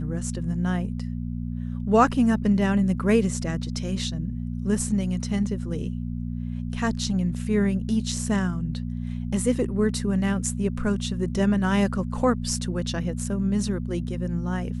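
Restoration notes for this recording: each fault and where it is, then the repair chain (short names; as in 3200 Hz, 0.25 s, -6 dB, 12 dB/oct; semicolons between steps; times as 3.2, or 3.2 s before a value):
hum 60 Hz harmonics 4 -30 dBFS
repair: de-hum 60 Hz, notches 4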